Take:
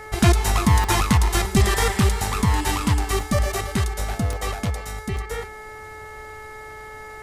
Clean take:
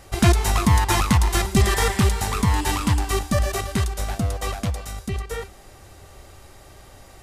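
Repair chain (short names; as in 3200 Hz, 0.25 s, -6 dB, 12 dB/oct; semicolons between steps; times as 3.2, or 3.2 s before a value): de-hum 431.4 Hz, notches 5; interpolate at 0.84/3.2/4.33/5.17, 1.4 ms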